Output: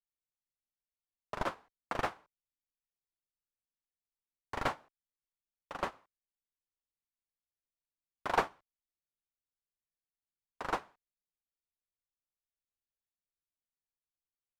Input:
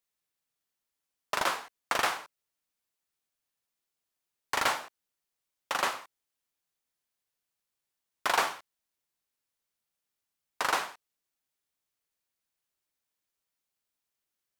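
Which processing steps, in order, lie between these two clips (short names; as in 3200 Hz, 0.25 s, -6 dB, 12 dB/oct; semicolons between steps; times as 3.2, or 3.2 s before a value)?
tilt -4 dB/oct; upward expander 2.5:1, over -36 dBFS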